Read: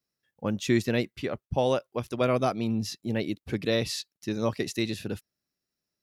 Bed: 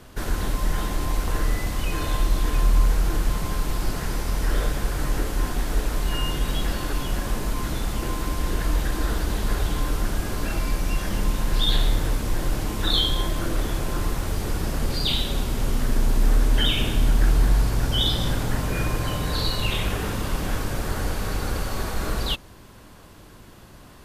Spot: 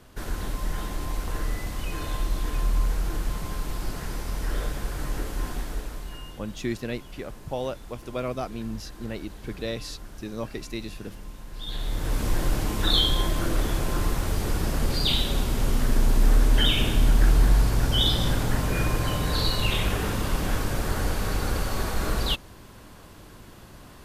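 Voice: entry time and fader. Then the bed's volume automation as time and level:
5.95 s, −5.5 dB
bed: 0:05.55 −5.5 dB
0:06.42 −17.5 dB
0:11.53 −17.5 dB
0:12.22 0 dB

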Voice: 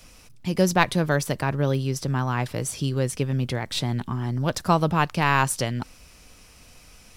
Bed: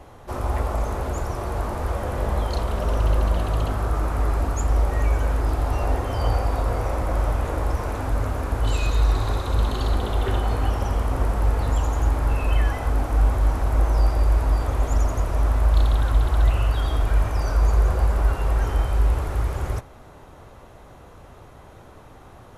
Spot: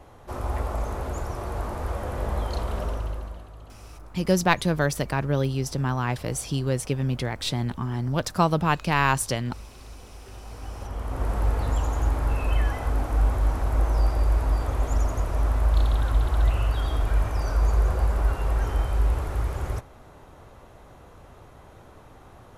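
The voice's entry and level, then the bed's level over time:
3.70 s, −1.0 dB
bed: 0:02.80 −4 dB
0:03.53 −22 dB
0:10.27 −22 dB
0:11.34 −3 dB

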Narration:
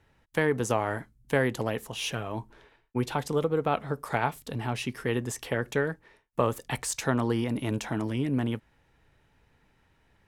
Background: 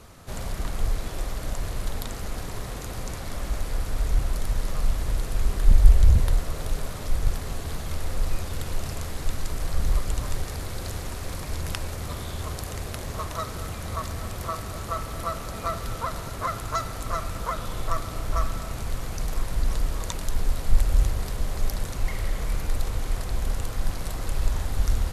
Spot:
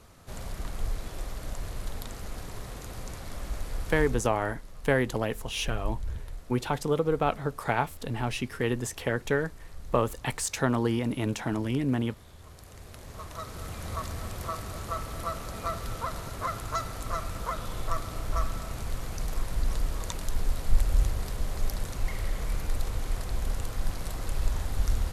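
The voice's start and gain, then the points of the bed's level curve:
3.55 s, +0.5 dB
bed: 0:04.03 −6 dB
0:04.36 −18.5 dB
0:12.38 −18.5 dB
0:13.83 −3.5 dB

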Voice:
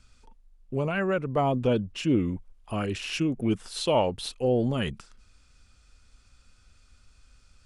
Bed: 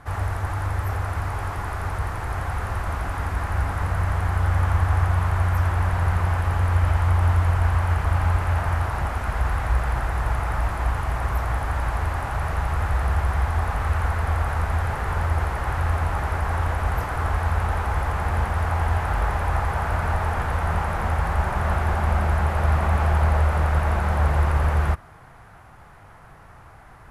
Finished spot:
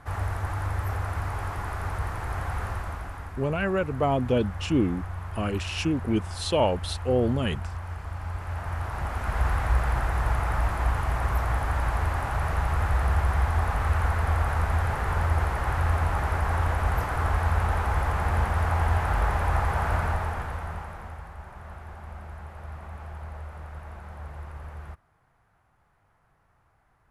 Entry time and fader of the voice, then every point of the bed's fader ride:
2.65 s, +0.5 dB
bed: 0:02.65 −3.5 dB
0:03.39 −14 dB
0:08.18 −14 dB
0:09.42 −1.5 dB
0:19.96 −1.5 dB
0:21.34 −19.5 dB

